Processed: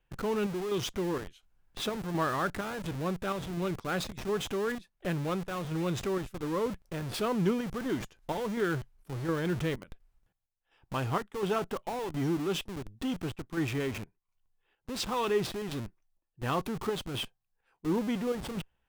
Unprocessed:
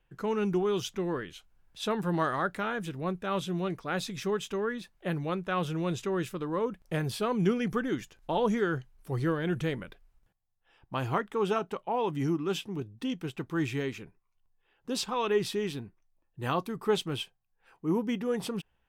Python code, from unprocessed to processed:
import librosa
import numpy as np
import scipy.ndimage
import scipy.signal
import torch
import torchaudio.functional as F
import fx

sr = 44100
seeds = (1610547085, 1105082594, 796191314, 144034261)

p1 = fx.chopper(x, sr, hz=1.4, depth_pct=60, duty_pct=65)
p2 = fx.schmitt(p1, sr, flips_db=-42.5)
p3 = p1 + F.gain(torch.from_numpy(p2), -4.0).numpy()
y = F.gain(torch.from_numpy(p3), -3.0).numpy()